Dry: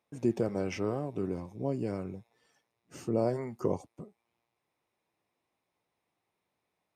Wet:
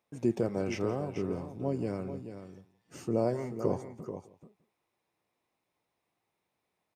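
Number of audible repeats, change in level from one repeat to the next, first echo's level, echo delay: 3, no steady repeat, -18.5 dB, 0.171 s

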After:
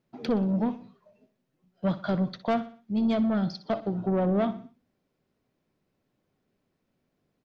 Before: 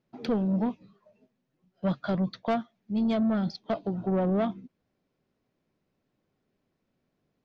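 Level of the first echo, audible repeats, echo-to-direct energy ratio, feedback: -14.5 dB, 3, -13.5 dB, 43%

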